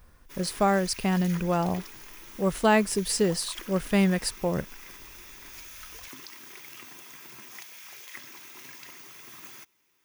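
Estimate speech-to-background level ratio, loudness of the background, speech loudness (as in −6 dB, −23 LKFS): 17.0 dB, −43.0 LKFS, −26.0 LKFS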